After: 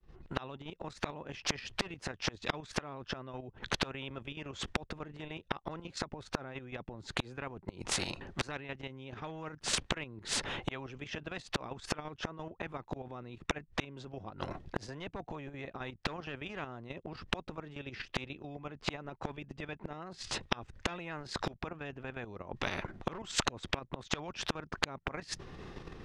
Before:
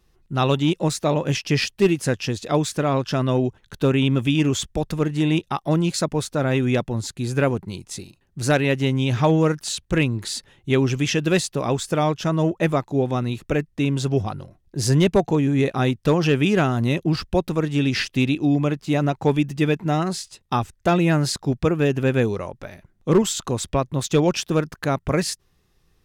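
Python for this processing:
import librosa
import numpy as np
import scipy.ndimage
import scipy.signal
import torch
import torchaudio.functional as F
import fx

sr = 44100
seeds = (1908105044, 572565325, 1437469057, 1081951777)

y = fx.fade_in_head(x, sr, length_s=0.85)
y = fx.spacing_loss(y, sr, db_at_10k=28)
y = fx.level_steps(y, sr, step_db=10)
y = fx.gate_flip(y, sr, shuts_db=-25.0, range_db=-36)
y = fx.spectral_comp(y, sr, ratio=4.0)
y = y * librosa.db_to_amplitude(12.0)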